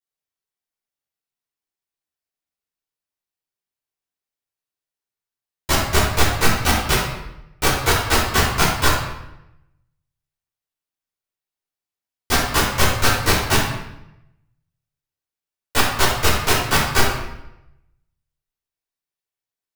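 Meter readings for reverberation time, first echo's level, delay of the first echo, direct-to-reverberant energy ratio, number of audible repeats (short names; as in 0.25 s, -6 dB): 0.85 s, none, none, -10.0 dB, none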